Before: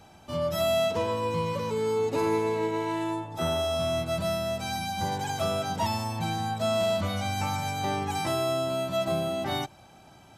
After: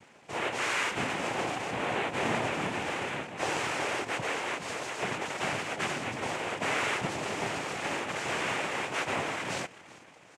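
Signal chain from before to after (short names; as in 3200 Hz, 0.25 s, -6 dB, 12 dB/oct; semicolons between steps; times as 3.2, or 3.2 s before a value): LPF 2900 Hz; frequency-shifting echo 0.382 s, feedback 44%, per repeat +35 Hz, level -20 dB; full-wave rectifier; noise vocoder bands 4; gain +1.5 dB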